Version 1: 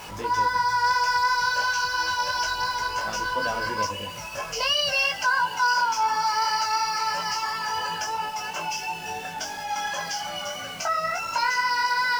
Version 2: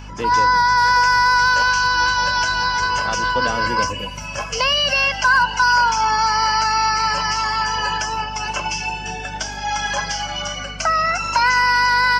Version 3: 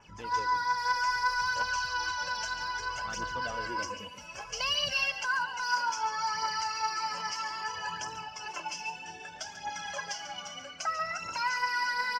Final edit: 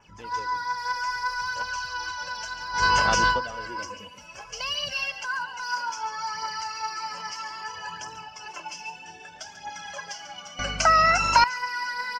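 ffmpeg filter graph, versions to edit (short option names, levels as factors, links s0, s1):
-filter_complex "[1:a]asplit=2[s0][s1];[2:a]asplit=3[s2][s3][s4];[s2]atrim=end=2.86[s5];[s0]atrim=start=2.7:end=3.44[s6];[s3]atrim=start=3.28:end=10.592[s7];[s1]atrim=start=10.588:end=11.442[s8];[s4]atrim=start=11.438[s9];[s5][s6]acrossfade=d=0.16:c1=tri:c2=tri[s10];[s10][s7]acrossfade=d=0.16:c1=tri:c2=tri[s11];[s11][s8]acrossfade=d=0.004:c1=hsin:c2=hsin[s12];[s12][s9]acrossfade=d=0.004:c1=hsin:c2=hsin"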